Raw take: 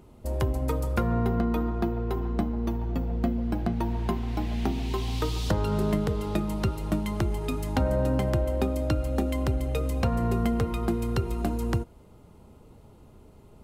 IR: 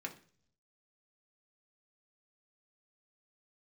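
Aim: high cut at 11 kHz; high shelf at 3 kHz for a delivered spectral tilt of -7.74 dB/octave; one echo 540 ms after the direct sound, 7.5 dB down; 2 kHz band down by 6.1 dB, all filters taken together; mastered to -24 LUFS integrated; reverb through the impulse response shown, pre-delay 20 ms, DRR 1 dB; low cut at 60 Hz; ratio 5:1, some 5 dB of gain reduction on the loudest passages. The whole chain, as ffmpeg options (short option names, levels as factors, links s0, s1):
-filter_complex "[0:a]highpass=60,lowpass=11000,equalizer=f=2000:t=o:g=-6.5,highshelf=f=3000:g=-5.5,acompressor=threshold=0.0447:ratio=5,aecho=1:1:540:0.422,asplit=2[s0][s1];[1:a]atrim=start_sample=2205,adelay=20[s2];[s1][s2]afir=irnorm=-1:irlink=0,volume=0.891[s3];[s0][s3]amix=inputs=2:normalize=0,volume=2.11"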